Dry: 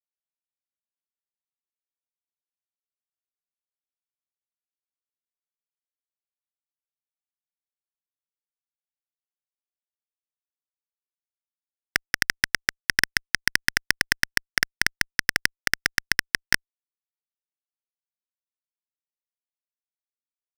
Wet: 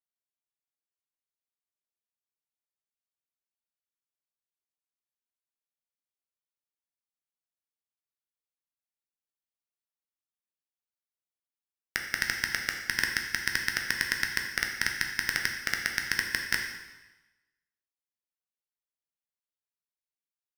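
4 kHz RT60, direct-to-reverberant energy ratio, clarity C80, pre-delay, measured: 1.0 s, 2.0 dB, 7.0 dB, 5 ms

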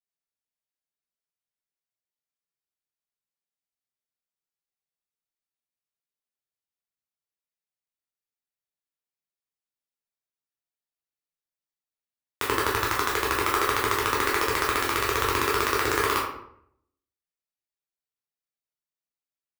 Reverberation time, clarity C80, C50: 0.70 s, 6.5 dB, 3.5 dB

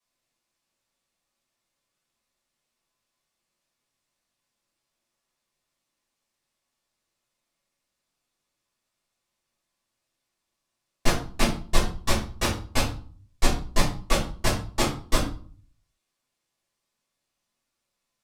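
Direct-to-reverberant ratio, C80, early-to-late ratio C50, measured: -9.0 dB, 12.0 dB, 7.0 dB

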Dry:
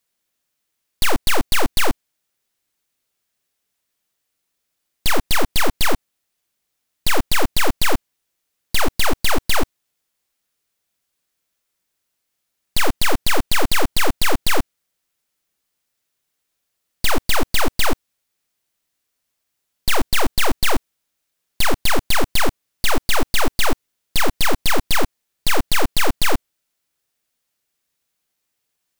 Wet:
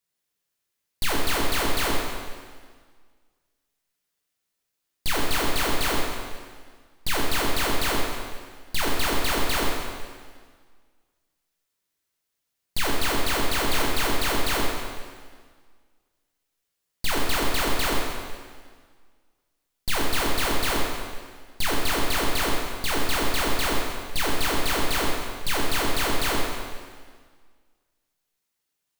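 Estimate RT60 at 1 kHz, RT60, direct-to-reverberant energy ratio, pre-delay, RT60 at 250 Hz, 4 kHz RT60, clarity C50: 1.7 s, 1.7 s, -3.0 dB, 6 ms, 1.7 s, 1.6 s, 0.0 dB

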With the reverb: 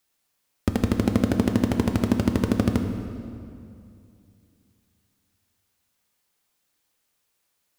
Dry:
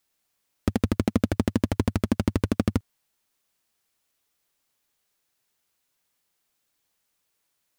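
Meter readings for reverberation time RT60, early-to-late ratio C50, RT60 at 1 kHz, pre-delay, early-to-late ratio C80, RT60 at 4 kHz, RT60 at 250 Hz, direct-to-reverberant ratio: 2.5 s, 7.0 dB, 2.4 s, 3 ms, 7.5 dB, 1.8 s, 2.9 s, 5.0 dB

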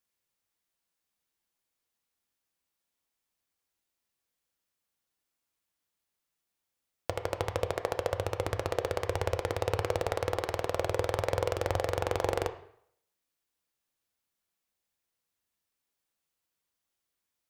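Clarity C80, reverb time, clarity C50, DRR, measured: 15.5 dB, 0.65 s, 12.0 dB, 7.5 dB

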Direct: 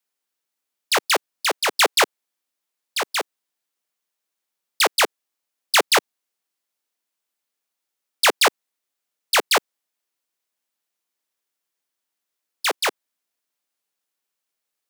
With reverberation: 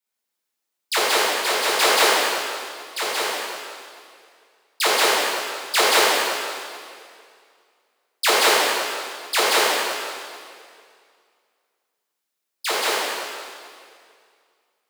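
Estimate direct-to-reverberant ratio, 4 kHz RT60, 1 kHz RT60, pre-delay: -8.5 dB, 2.0 s, 2.2 s, 4 ms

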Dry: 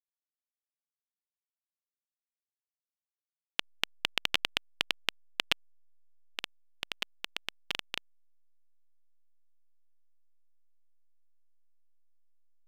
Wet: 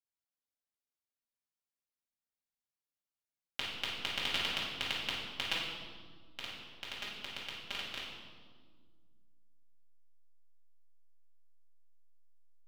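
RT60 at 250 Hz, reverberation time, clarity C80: 2.6 s, 1.7 s, 3.0 dB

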